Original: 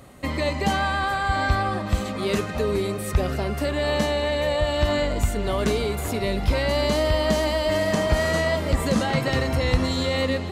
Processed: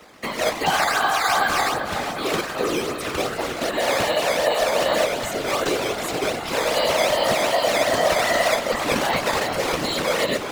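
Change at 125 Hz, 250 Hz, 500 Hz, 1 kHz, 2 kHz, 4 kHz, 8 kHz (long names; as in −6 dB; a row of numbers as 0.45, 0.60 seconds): −11.5, −3.5, +2.0, +5.0, +4.0, +4.5, +7.5 decibels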